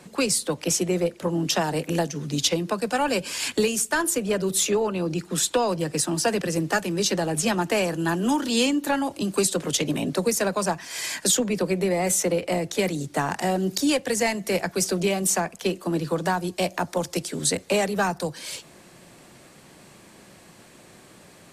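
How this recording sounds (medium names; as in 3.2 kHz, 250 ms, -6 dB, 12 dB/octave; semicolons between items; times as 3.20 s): noise floor -51 dBFS; spectral tilt -3.5 dB/octave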